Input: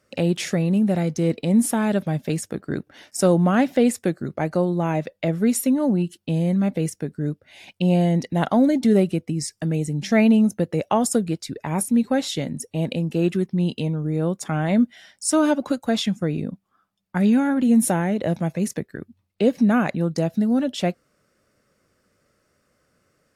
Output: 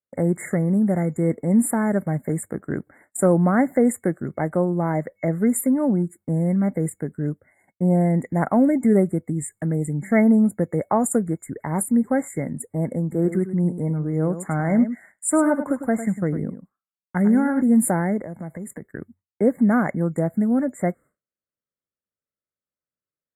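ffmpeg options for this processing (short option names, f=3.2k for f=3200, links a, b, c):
-filter_complex "[0:a]asettb=1/sr,asplit=3[a][b][c];[a]atrim=end=13.024[d];[b]atrim=start=13.02:end=17.61,asetpts=PTS-STARTPTS,afade=t=in:d=0.004:c=qsin,afade=t=out:st=4.586:d=0.004:c=qsin,aecho=1:1:102:0.282,atrim=end_sample=202419[e];[c]atrim=start=17.606[f];[d][e]acrossfade=d=0.004:c1=hsin:c2=qsin[g];[g][f]acrossfade=d=0.004:c1=qsin:c2=hsin,asettb=1/sr,asplit=3[h][i][j];[h]atrim=end=18.184[k];[i]atrim=start=18.18:end=18.85,asetpts=PTS-STARTPTS,afade=t=in:d=0.004:c=qsin,afade=t=out:st=0.666:d=0.004:c=qsin,acompressor=threshold=-29dB:ratio=12:attack=3.2:release=140:knee=1:detection=peak[l];[j]atrim=start=18.846[m];[k][l]acrossfade=d=0.004:c1=hsin:c2=qsin[n];[n][m]acrossfade=d=0.004:c1=qsin:c2=hsin,afftfilt=real='re*(1-between(b*sr/4096,2200,7000))':imag='im*(1-between(b*sr/4096,2200,7000))':win_size=4096:overlap=0.75,agate=range=-33dB:threshold=-41dB:ratio=3:detection=peak"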